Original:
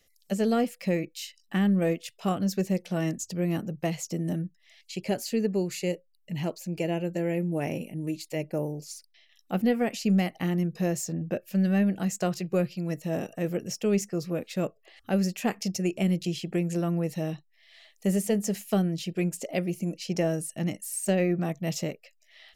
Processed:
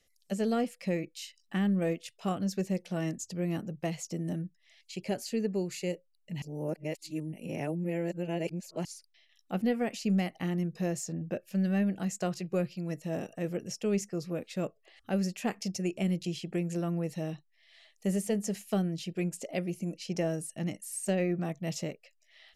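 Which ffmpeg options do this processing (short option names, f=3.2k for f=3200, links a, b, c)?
-filter_complex "[0:a]asplit=3[a][b][c];[a]atrim=end=6.422[d];[b]atrim=start=6.418:end=8.852,asetpts=PTS-STARTPTS,areverse[e];[c]atrim=start=8.848[f];[d][e]acrossfade=d=0.004:c1=hsin:c2=hsin[g];[g][f]acrossfade=d=0.004:c1=hsin:c2=hsin,lowpass=f=12k:w=0.5412,lowpass=f=12k:w=1.3066,volume=-4.5dB"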